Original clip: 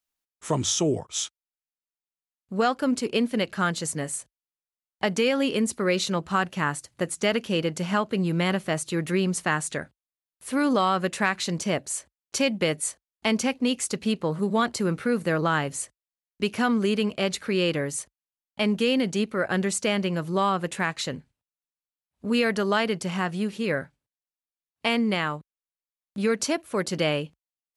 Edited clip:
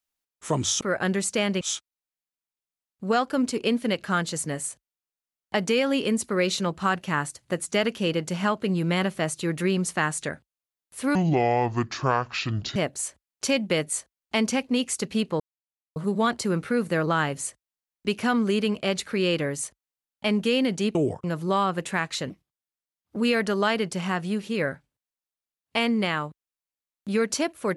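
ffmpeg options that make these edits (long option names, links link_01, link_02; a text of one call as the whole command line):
ffmpeg -i in.wav -filter_complex "[0:a]asplit=10[link_01][link_02][link_03][link_04][link_05][link_06][link_07][link_08][link_09][link_10];[link_01]atrim=end=0.812[link_11];[link_02]atrim=start=19.298:end=20.102[link_12];[link_03]atrim=start=1.098:end=10.644[link_13];[link_04]atrim=start=10.64:end=11.67,asetpts=PTS-STARTPTS,asetrate=28224,aresample=44100,atrim=end_sample=70973,asetpts=PTS-STARTPTS[link_14];[link_05]atrim=start=11.666:end=14.31,asetpts=PTS-STARTPTS,afade=type=out:start_time=2.64:duration=0.004:curve=hsin,apad=pad_dur=0.56[link_15];[link_06]atrim=start=14.31:end=19.302,asetpts=PTS-STARTPTS,afade=type=in:duration=0.004:curve=hsin[link_16];[link_07]atrim=start=0.808:end=1.102[link_17];[link_08]atrim=start=20.098:end=21.164[link_18];[link_09]atrim=start=21.16:end=22.26,asetpts=PTS-STARTPTS,asetrate=56007,aresample=44100[link_19];[link_10]atrim=start=22.256[link_20];[link_11][link_12]acrossfade=duration=0.004:curve1=hsin:curve2=hsin[link_21];[link_21][link_13]acrossfade=duration=0.004:curve1=hsin:curve2=hsin[link_22];[link_22][link_14]acrossfade=duration=0.004:curve1=hsin:curve2=hsin[link_23];[link_15][link_16]concat=n=2:v=0:a=1[link_24];[link_23][link_24]acrossfade=duration=0.004:curve1=hsin:curve2=hsin[link_25];[link_25][link_17]acrossfade=duration=0.004:curve1=hsin:curve2=hsin[link_26];[link_26][link_18]acrossfade=duration=0.004:curve1=hsin:curve2=hsin[link_27];[link_27][link_19]acrossfade=duration=0.004:curve1=hsin:curve2=hsin[link_28];[link_28][link_20]acrossfade=duration=0.004:curve1=hsin:curve2=hsin" out.wav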